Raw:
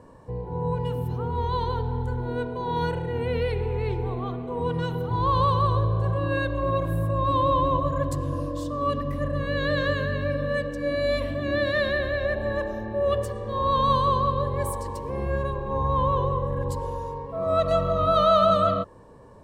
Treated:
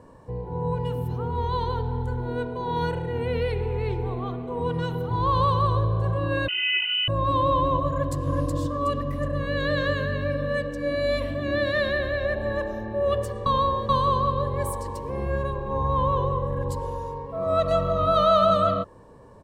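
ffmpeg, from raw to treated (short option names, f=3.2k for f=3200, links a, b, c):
-filter_complex "[0:a]asettb=1/sr,asplit=3[a][b][c];[a]atrim=end=6.484[d];[b]atrim=start=6.48:end=7.08,asetpts=PTS-STARTPTS,afade=t=in:d=0.004:c=qsin,afade=t=out:st=0.596:d=0.004:c=qsin,lowpass=f=2.6k:t=q:w=0.5098,lowpass=f=2.6k:t=q:w=0.6013,lowpass=f=2.6k:t=q:w=0.9,lowpass=f=2.6k:t=q:w=2.563,afreqshift=-3100[e];[c]atrim=start=7.076[f];[d][e]acrossfade=d=0.004:c1=hsin:c2=qsin[g];[g][f]acrossfade=d=0.004:c1=qsin:c2=hsin,asplit=2[h][i];[i]afade=t=in:st=7.89:d=0.01,afade=t=out:st=8.29:d=0.01,aecho=0:1:370|740|1110|1480|1850:0.668344|0.267338|0.106935|0.042774|0.0171096[j];[h][j]amix=inputs=2:normalize=0,asplit=3[k][l][m];[k]atrim=end=13.462[n];[l]atrim=start=13.458:end=13.892,asetpts=PTS-STARTPTS,areverse[o];[m]atrim=start=13.888[p];[n][o]acrossfade=d=0.004:c1=hsin:c2=hsin[q];[q][p]acrossfade=d=0.004:c1=hsin:c2=hsin"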